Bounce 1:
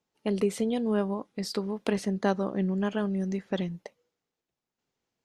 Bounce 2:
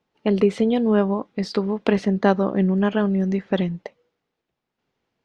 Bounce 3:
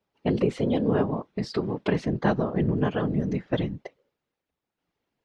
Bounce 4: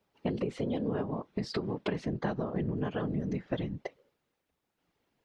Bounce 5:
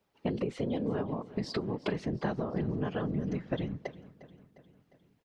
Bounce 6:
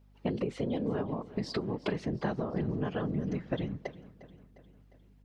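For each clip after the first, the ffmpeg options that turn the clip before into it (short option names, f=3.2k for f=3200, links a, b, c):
-af "lowpass=3.6k,volume=8.5dB"
-af "afftfilt=real='hypot(re,im)*cos(2*PI*random(0))':imag='hypot(re,im)*sin(2*PI*random(1))':win_size=512:overlap=0.75,volume=1dB"
-af "acompressor=threshold=-34dB:ratio=5,volume=3.5dB"
-af "aecho=1:1:354|708|1062|1416|1770:0.126|0.0692|0.0381|0.0209|0.0115"
-af "aeval=exprs='val(0)+0.00112*(sin(2*PI*50*n/s)+sin(2*PI*2*50*n/s)/2+sin(2*PI*3*50*n/s)/3+sin(2*PI*4*50*n/s)/4+sin(2*PI*5*50*n/s)/5)':c=same"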